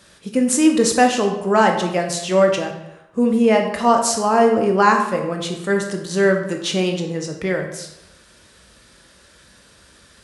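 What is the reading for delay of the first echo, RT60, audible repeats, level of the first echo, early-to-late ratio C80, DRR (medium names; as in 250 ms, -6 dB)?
no echo, 0.95 s, no echo, no echo, 9.5 dB, 3.0 dB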